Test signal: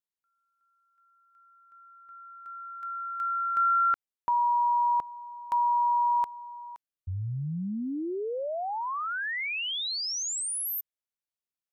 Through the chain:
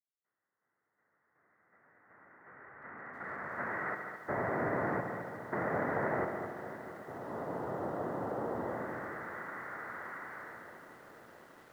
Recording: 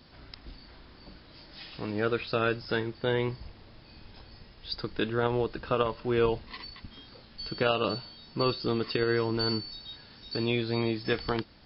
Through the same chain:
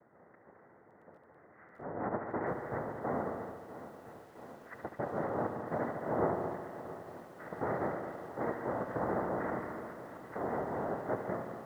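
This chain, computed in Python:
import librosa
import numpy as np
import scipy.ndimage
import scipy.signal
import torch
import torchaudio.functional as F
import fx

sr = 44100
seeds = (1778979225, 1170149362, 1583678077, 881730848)

p1 = fx.highpass(x, sr, hz=130.0, slope=6)
p2 = 10.0 ** (-23.5 / 20.0) * (np.abs((p1 / 10.0 ** (-23.5 / 20.0) + 3.0) % 4.0 - 2.0) - 1.0)
p3 = p1 + (p2 * 10.0 ** (-7.5 / 20.0))
p4 = fx.noise_vocoder(p3, sr, seeds[0], bands=2)
p5 = scipy.signal.sosfilt(scipy.signal.cheby1(6, 3, 2000.0, 'lowpass', fs=sr, output='sos'), p4)
p6 = p5 + fx.echo_heads(p5, sr, ms=72, heads='all three', feedback_pct=49, wet_db=-11.5, dry=0)
p7 = fx.echo_crushed(p6, sr, ms=672, feedback_pct=80, bits=8, wet_db=-14.5)
y = p7 * 10.0 ** (-7.5 / 20.0)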